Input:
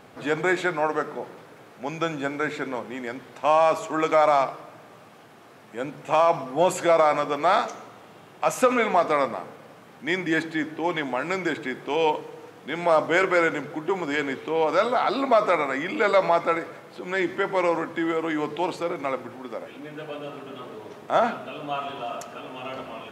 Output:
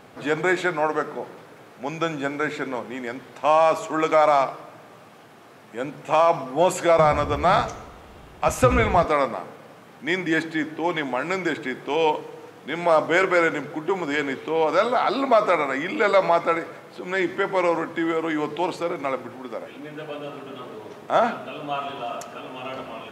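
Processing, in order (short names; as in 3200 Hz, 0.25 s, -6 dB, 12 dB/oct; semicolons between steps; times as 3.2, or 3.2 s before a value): 6.98–9.05 octaver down 2 oct, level +3 dB; gain +1.5 dB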